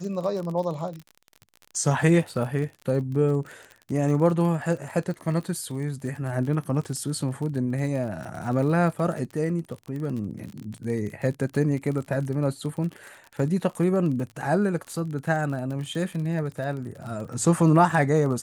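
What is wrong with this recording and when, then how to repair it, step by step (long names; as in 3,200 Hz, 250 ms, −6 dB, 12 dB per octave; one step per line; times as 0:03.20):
surface crackle 39 per second −32 dBFS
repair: click removal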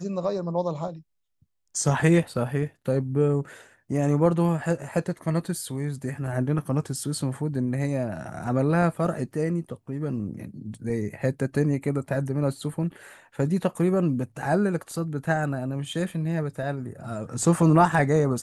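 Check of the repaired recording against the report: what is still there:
none of them is left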